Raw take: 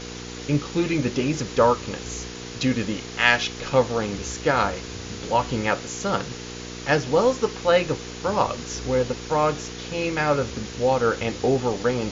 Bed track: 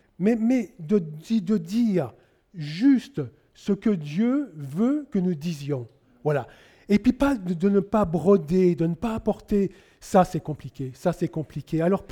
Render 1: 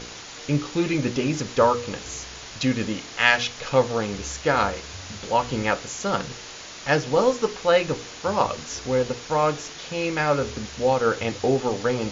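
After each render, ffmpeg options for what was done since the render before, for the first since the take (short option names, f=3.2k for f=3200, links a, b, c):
-af "bandreject=f=60:t=h:w=4,bandreject=f=120:t=h:w=4,bandreject=f=180:t=h:w=4,bandreject=f=240:t=h:w=4,bandreject=f=300:t=h:w=4,bandreject=f=360:t=h:w=4,bandreject=f=420:t=h:w=4,bandreject=f=480:t=h:w=4"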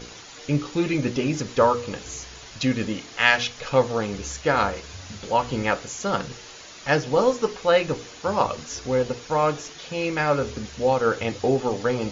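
-af "afftdn=nr=6:nf=-40"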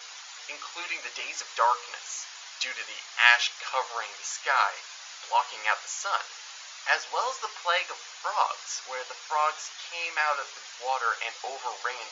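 -af "highpass=f=830:w=0.5412,highpass=f=830:w=1.3066"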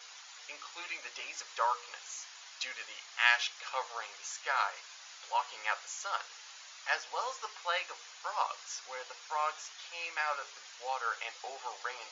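-af "volume=-7.5dB"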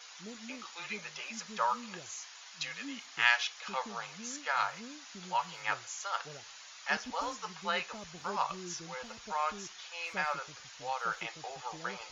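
-filter_complex "[1:a]volume=-26.5dB[a];[0:a][a]amix=inputs=2:normalize=0"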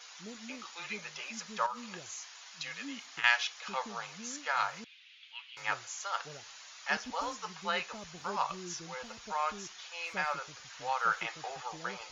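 -filter_complex "[0:a]asettb=1/sr,asplit=3[a][b][c];[a]atrim=end=1.664[d];[b]atrim=start=1.66:end=3.24,asetpts=PTS-STARTPTS,afade=t=in:d=0.004:c=qsin,afade=t=out:st=1.576:d=0.004:c=qsin,acompressor=threshold=-34dB:ratio=6:attack=3.2:release=140:knee=1:detection=peak[e];[c]atrim=start=3.236[f];[d][e]acrossfade=d=0.004:c1=hsin:c2=qsin[g];[g][f]acrossfade=d=0.004:c1=qsin:c2=hsin,asettb=1/sr,asplit=3[h][i][j];[h]atrim=end=4.844[k];[i]atrim=start=4.84:end=5.57,asetpts=PTS-STARTPTS,afade=t=in:d=0.004:c=qsin,afade=t=out:st=0.726:d=0.004:c=qsin,asuperpass=centerf=2800:order=4:qfactor=2[l];[j]atrim=start=5.566[m];[k][l]acrossfade=d=0.004:c1=hsin:c2=qsin[n];[n][m]acrossfade=d=0.004:c1=qsin:c2=hsin,asettb=1/sr,asplit=3[o][p][q];[o]atrim=end=10.704[r];[p]atrim=start=10.7:end=11.63,asetpts=PTS-STARTPTS,afade=t=in:d=0.004:c=qsin,afade=t=out:st=0.926:d=0.004:c=qsin,equalizer=f=1.4k:w=0.93:g=5.5[s];[q]atrim=start=11.626[t];[r][s]acrossfade=d=0.004:c1=hsin:c2=qsin[u];[u][t]acrossfade=d=0.004:c1=qsin:c2=hsin"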